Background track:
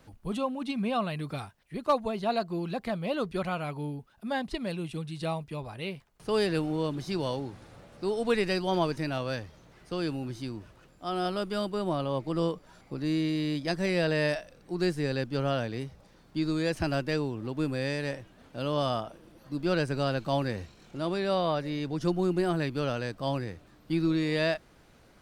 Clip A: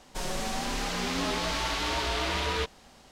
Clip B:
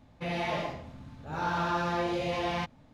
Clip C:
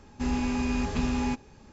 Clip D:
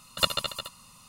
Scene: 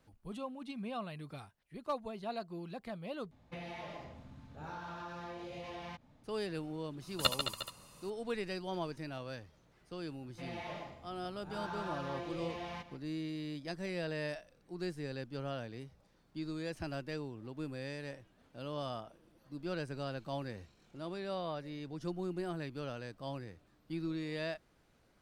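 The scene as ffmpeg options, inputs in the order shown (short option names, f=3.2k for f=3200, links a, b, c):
-filter_complex "[2:a]asplit=2[a][b];[0:a]volume=-11.5dB[c];[a]acompressor=threshold=-38dB:ratio=10:attack=47:release=221:knee=6:detection=peak[d];[b]aecho=1:1:147:0.211[e];[c]asplit=2[f][g];[f]atrim=end=3.314[h];[d]atrim=end=2.93,asetpts=PTS-STARTPTS,volume=-6.5dB[i];[g]atrim=start=6.236[j];[4:a]atrim=end=1.08,asetpts=PTS-STARTPTS,volume=-6dB,afade=t=in:d=0.004:c=hsin,afade=t=out:st=1.076:d=0.004:c=hsin,adelay=7020[k];[e]atrim=end=2.93,asetpts=PTS-STARTPTS,volume=-12dB,afade=t=in:d=0.004:c=hsin,afade=t=out:st=2.926:d=0.004:c=hsin,adelay=10170[l];[h][i]acrossfade=d=0.004:c1=hsin:c2=hsin[m];[m][j]acrossfade=d=0.004:c1=hsin:c2=hsin[n];[n][k][l]amix=inputs=3:normalize=0"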